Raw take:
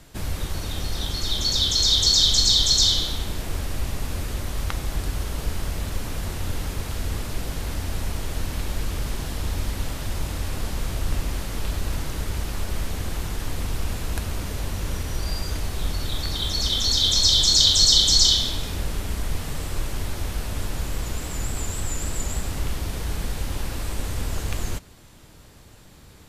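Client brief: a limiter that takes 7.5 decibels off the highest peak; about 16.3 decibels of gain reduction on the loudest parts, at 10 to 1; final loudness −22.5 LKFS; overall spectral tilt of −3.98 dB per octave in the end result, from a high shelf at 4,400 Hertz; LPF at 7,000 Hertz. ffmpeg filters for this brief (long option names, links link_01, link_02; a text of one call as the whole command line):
ffmpeg -i in.wav -af "lowpass=7000,highshelf=frequency=4400:gain=-4,acompressor=threshold=-32dB:ratio=10,volume=18.5dB,alimiter=limit=-11.5dB:level=0:latency=1" out.wav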